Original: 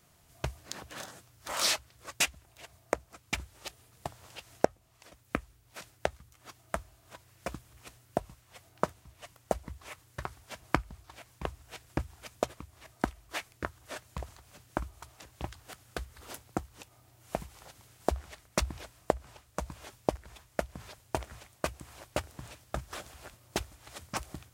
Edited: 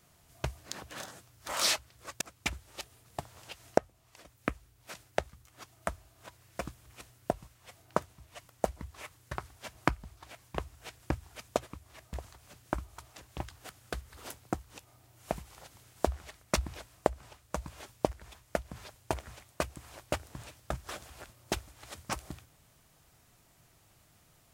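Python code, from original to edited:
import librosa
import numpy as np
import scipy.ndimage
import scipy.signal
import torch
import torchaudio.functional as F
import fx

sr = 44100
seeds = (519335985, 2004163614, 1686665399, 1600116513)

y = fx.edit(x, sr, fx.cut(start_s=2.21, length_s=0.87),
    fx.cut(start_s=13.0, length_s=1.17), tone=tone)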